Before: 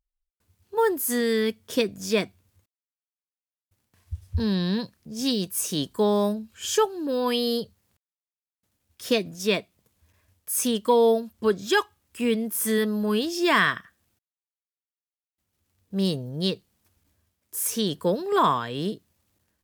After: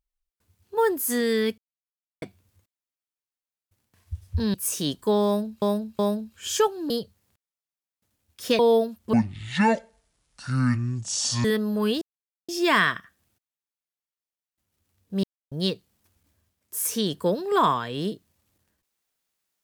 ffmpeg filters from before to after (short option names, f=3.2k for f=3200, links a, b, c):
-filter_complex "[0:a]asplit=13[a][b][c][d][e][f][g][h][i][j][k][l][m];[a]atrim=end=1.58,asetpts=PTS-STARTPTS,afade=t=out:st=1.576:d=0.004:c=hsin[n];[b]atrim=start=1.58:end=2.22,asetpts=PTS-STARTPTS,volume=0[o];[c]atrim=start=2.22:end=4.542,asetpts=PTS-STARTPTS,afade=t=in:d=0.004:c=hsin[p];[d]atrim=start=5.458:end=6.542[q];[e]atrim=start=6.168:end=6.542[r];[f]atrim=start=6.168:end=7.082[s];[g]atrim=start=7.508:end=9.202[t];[h]atrim=start=10.928:end=11.474[u];[i]atrim=start=11.47:end=12.72,asetpts=PTS-STARTPTS,asetrate=23814,aresample=44100,atrim=end_sample=102083,asetpts=PTS-STARTPTS[v];[j]atrim=start=12.716:end=13.29,asetpts=PTS-STARTPTS,afade=t=out:st=0.57:d=0.004:c=hsin,apad=pad_dur=0.47[w];[k]atrim=start=13.29:end=16.04,asetpts=PTS-STARTPTS,afade=t=in:d=0.004:c=hsin,afade=t=out:st=2.746:d=0.004:c=hsin[x];[l]atrim=start=16.04:end=16.32,asetpts=PTS-STARTPTS,volume=0[y];[m]atrim=start=16.32,asetpts=PTS-STARTPTS,afade=t=in:d=0.004:c=hsin[z];[n][o][p]concat=n=3:v=0:a=1[aa];[aa][q]acrossfade=d=0.004:c1=hsin:c2=hsin[ab];[ab][r]acrossfade=d=0.004:c1=hsin:c2=hsin[ac];[ac][s]acrossfade=d=0.004:c1=hsin:c2=hsin[ad];[ad][t]acrossfade=d=0.004:c1=hsin:c2=hsin[ae];[ae][u]acrossfade=d=0.004:c1=hsin:c2=hsin[af];[af][v]acrossfade=d=0.004:c1=hsin:c2=hsin[ag];[w][x][y][z]concat=n=4:v=0:a=1[ah];[ag][ah]acrossfade=d=0.004:c1=hsin:c2=hsin"